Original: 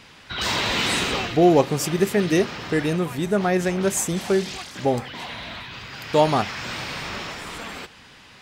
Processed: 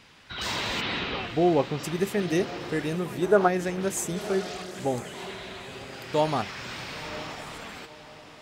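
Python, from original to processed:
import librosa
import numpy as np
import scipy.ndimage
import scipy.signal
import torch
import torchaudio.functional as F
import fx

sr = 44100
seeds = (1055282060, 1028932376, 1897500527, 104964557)

y = fx.lowpass(x, sr, hz=4100.0, slope=24, at=(0.8, 1.83), fade=0.02)
y = fx.spec_box(y, sr, start_s=3.22, length_s=0.26, low_hz=300.0, high_hz=1700.0, gain_db=10)
y = fx.echo_diffused(y, sr, ms=992, feedback_pct=41, wet_db=-14)
y = y * librosa.db_to_amplitude(-6.5)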